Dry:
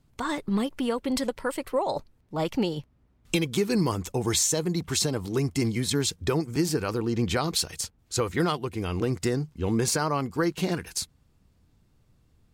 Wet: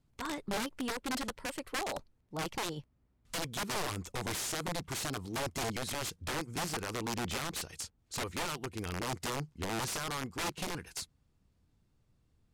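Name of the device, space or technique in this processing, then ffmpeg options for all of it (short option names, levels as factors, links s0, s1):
overflowing digital effects unit: -af "aeval=exprs='(mod(11.2*val(0)+1,2)-1)/11.2':c=same,lowpass=12000,volume=0.376"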